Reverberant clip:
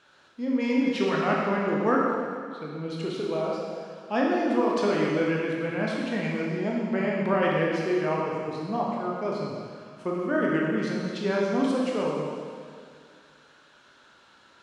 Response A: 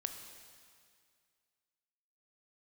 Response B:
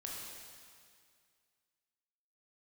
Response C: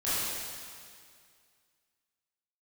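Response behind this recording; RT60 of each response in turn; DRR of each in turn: B; 2.1, 2.1, 2.1 s; 5.5, -3.5, -13.5 dB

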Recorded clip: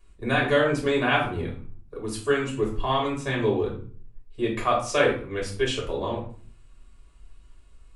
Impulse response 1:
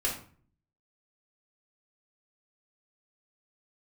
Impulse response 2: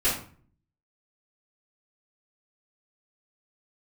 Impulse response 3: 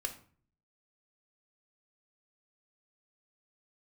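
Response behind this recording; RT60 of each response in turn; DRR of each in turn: 1; 0.45, 0.45, 0.45 s; -3.5, -13.0, 5.5 dB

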